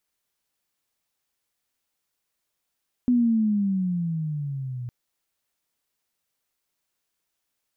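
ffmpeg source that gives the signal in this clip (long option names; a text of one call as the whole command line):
ffmpeg -f lavfi -i "aevalsrc='pow(10,(-16-14*t/1.81)/20)*sin(2*PI*250*1.81/log(120/250)*(exp(log(120/250)*t/1.81)-1))':duration=1.81:sample_rate=44100" out.wav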